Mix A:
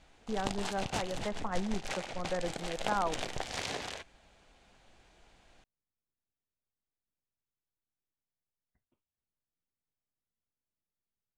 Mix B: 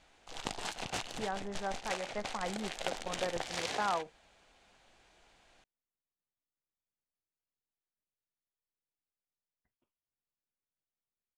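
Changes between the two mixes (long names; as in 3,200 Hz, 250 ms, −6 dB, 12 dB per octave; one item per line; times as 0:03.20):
speech: entry +0.90 s
master: add low-shelf EQ 310 Hz −8 dB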